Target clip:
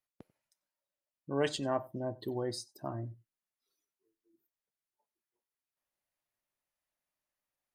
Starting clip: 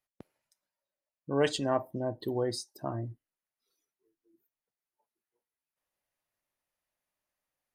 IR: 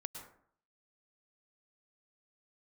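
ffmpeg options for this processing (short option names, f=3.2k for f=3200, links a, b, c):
-filter_complex "[0:a]bandreject=f=480:w=14,asplit=2[a][b];[1:a]atrim=start_sample=2205,afade=t=out:st=0.15:d=0.01,atrim=end_sample=7056,asetrate=48510,aresample=44100[c];[b][c]afir=irnorm=-1:irlink=0,volume=1dB[d];[a][d]amix=inputs=2:normalize=0,volume=-8dB"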